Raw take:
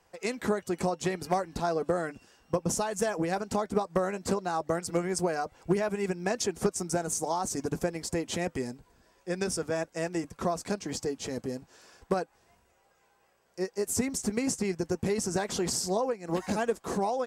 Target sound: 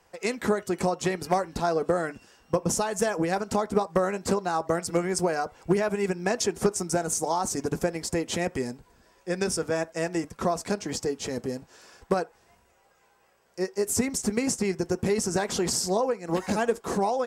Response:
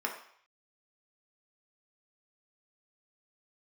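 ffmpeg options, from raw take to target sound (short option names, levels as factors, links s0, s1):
-filter_complex "[0:a]asplit=2[s0][s1];[1:a]atrim=start_sample=2205,atrim=end_sample=3969[s2];[s1][s2]afir=irnorm=-1:irlink=0,volume=0.1[s3];[s0][s3]amix=inputs=2:normalize=0,volume=1.41"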